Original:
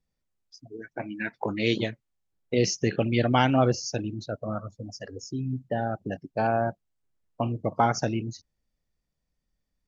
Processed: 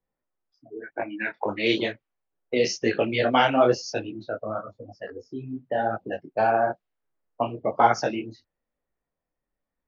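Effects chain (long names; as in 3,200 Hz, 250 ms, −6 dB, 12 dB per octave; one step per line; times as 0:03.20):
three-way crossover with the lows and the highs turned down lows −14 dB, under 310 Hz, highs −24 dB, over 5,400 Hz
low-pass that shuts in the quiet parts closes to 1,500 Hz, open at −23.5 dBFS
micro pitch shift up and down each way 35 cents
level +8.5 dB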